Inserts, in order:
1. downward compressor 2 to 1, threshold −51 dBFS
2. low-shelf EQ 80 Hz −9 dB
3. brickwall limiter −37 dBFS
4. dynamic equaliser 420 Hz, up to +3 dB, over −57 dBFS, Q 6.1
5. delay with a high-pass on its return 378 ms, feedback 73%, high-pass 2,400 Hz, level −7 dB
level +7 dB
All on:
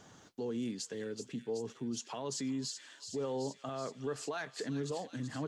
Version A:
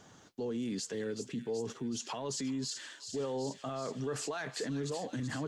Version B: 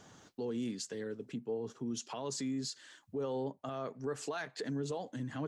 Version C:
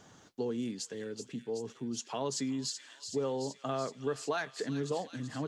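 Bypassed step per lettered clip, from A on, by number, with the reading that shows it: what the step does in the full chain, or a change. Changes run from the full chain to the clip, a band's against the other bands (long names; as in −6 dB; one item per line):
1, average gain reduction 12.0 dB
5, echo-to-direct ratio −10.0 dB to none audible
3, change in crest factor +3.5 dB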